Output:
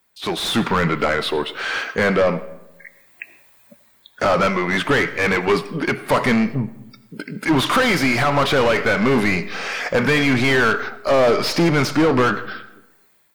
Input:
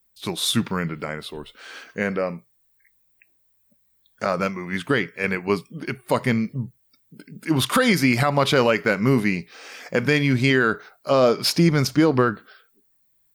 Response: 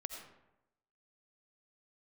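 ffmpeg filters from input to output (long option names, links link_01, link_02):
-filter_complex "[0:a]asplit=2[link_01][link_02];[link_02]highpass=frequency=720:poles=1,volume=27dB,asoftclip=type=tanh:threshold=-7.5dB[link_03];[link_01][link_03]amix=inputs=2:normalize=0,lowpass=frequency=1900:poles=1,volume=-6dB,asplit=2[link_04][link_05];[1:a]atrim=start_sample=2205[link_06];[link_05][link_06]afir=irnorm=-1:irlink=0,volume=-6dB[link_07];[link_04][link_07]amix=inputs=2:normalize=0,dynaudnorm=framelen=210:gausssize=5:maxgain=11.5dB,volume=-7.5dB"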